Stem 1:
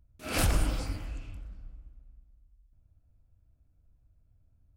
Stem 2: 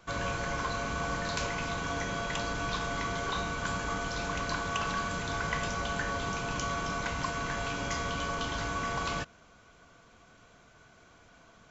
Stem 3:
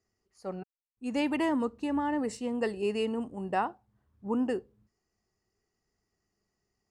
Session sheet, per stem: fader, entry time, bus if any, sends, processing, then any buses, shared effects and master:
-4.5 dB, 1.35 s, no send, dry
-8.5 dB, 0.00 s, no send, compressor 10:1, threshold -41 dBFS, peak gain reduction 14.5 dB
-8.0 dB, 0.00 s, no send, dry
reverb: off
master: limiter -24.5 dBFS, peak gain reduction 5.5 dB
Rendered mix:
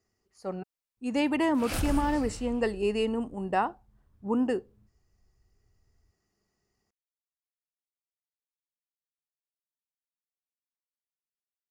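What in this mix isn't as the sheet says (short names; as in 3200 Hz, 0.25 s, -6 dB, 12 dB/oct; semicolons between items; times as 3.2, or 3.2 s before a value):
stem 2: muted; stem 3 -8.0 dB -> +2.5 dB; master: missing limiter -24.5 dBFS, peak gain reduction 5.5 dB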